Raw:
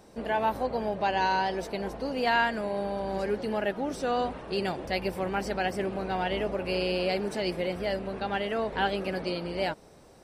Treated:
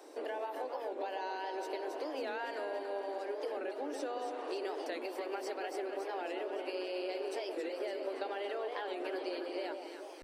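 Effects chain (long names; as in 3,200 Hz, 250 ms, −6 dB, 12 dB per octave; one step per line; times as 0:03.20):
Butterworth high-pass 280 Hz 96 dB per octave
low-shelf EQ 490 Hz +5 dB
brickwall limiter −21.5 dBFS, peak gain reduction 8 dB
downward compressor 12 to 1, threshold −37 dBFS, peak gain reduction 12.5 dB
delay that swaps between a low-pass and a high-pass 140 ms, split 940 Hz, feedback 76%, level −4.5 dB
wow of a warped record 45 rpm, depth 160 cents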